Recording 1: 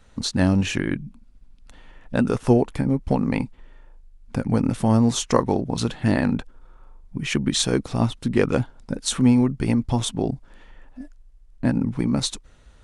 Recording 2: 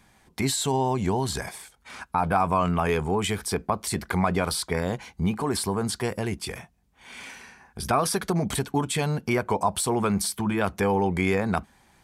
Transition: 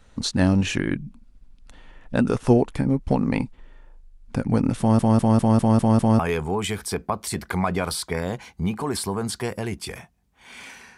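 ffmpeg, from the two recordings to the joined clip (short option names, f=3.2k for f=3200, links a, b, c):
-filter_complex "[0:a]apad=whole_dur=10.97,atrim=end=10.97,asplit=7[a][b][c][d][e][f][g];[a]atrim=end=4.992[h];[b]atrim=start=4.788:end=4.992[i];[c]atrim=start=4.788:end=4.992[j];[d]atrim=start=4.788:end=4.992[k];[e]atrim=start=4.788:end=4.992[l];[f]atrim=start=4.788:end=4.992[m];[g]atrim=start=4.788:end=4.992[n];[1:a]atrim=start=2.788:end=7.57[o];[h][i]acrossfade=d=0.004:c1=hsin:c2=hsin[p];[p][j]acrossfade=d=0.004:c1=hsin:c2=hsin[q];[q][k]acrossfade=d=0.004:c1=hsin:c2=hsin[r];[r][l]acrossfade=d=0.004:c1=hsin:c2=hsin[s];[s][m]acrossfade=d=0.004:c1=hsin:c2=hsin[t];[t][n]acrossfade=d=0.004:c1=hsin:c2=hsin[u];[u][o]acrossfade=d=0.004:c1=hsin:c2=hsin"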